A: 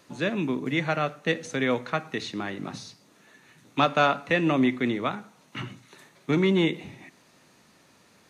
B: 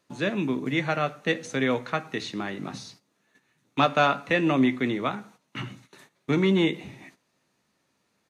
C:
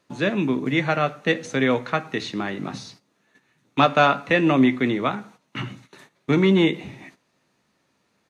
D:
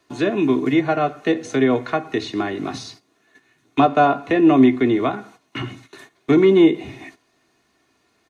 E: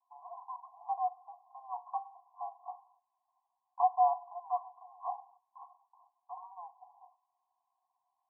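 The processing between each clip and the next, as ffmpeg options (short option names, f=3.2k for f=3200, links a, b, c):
-filter_complex "[0:a]asplit=2[a][b];[b]adelay=15,volume=-13dB[c];[a][c]amix=inputs=2:normalize=0,agate=range=-14dB:threshold=-51dB:ratio=16:detection=peak"
-af "highshelf=f=7.3k:g=-7,volume=4.5dB"
-filter_complex "[0:a]aecho=1:1:2.8:0.63,acrossover=split=200|950[a][b][c];[c]acompressor=threshold=-33dB:ratio=4[d];[a][b][d]amix=inputs=3:normalize=0,volume=3.5dB"
-af "asuperpass=centerf=880:order=20:qfactor=2.2,volume=-9dB"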